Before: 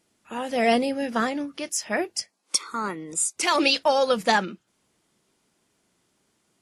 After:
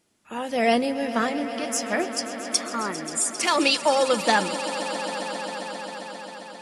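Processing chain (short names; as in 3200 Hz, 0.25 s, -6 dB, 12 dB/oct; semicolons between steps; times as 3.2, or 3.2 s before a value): swelling echo 0.133 s, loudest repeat 5, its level -15.5 dB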